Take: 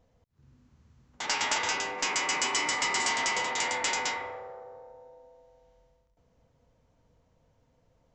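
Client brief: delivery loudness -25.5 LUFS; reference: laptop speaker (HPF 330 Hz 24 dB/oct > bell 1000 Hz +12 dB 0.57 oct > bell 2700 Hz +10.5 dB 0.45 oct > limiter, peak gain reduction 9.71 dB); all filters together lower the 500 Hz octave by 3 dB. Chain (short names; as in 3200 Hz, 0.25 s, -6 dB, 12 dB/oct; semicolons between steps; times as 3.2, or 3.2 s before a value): HPF 330 Hz 24 dB/oct; bell 500 Hz -5 dB; bell 1000 Hz +12 dB 0.57 oct; bell 2700 Hz +10.5 dB 0.45 oct; gain +2.5 dB; limiter -18 dBFS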